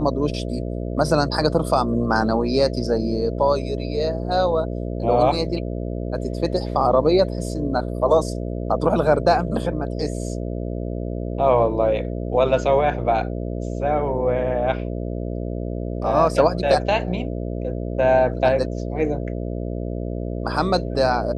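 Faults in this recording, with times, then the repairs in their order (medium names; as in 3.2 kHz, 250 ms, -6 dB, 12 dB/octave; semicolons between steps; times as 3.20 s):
buzz 60 Hz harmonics 11 -27 dBFS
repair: de-hum 60 Hz, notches 11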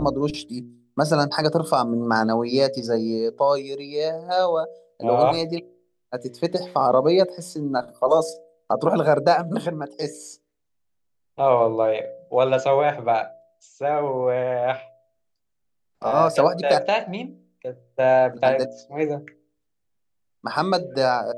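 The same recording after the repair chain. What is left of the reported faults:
nothing left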